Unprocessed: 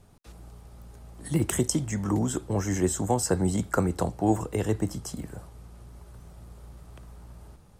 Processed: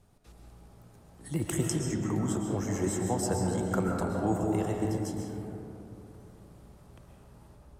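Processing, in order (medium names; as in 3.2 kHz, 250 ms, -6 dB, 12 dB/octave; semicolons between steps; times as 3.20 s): algorithmic reverb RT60 3 s, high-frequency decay 0.3×, pre-delay 90 ms, DRR 0 dB; trim -6.5 dB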